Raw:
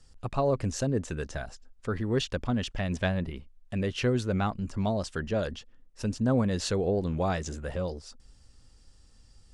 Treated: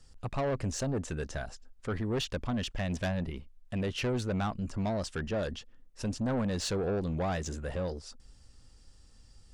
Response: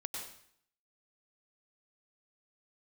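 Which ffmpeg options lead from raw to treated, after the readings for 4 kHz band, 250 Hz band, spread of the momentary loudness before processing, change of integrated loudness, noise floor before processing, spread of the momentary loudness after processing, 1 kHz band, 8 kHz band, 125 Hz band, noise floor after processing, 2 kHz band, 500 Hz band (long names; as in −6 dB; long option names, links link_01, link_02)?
−1.5 dB, −3.5 dB, 11 LU, −3.5 dB, −57 dBFS, 8 LU, −3.5 dB, −1.0 dB, −3.5 dB, −57 dBFS, −3.0 dB, −4.0 dB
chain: -af "asoftclip=type=tanh:threshold=-26.5dB"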